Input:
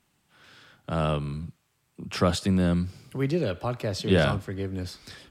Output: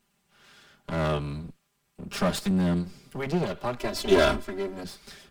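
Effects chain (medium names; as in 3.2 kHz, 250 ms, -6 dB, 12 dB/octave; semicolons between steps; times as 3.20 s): comb filter that takes the minimum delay 5 ms; 3.78–4.84 s: comb 3 ms, depth 99%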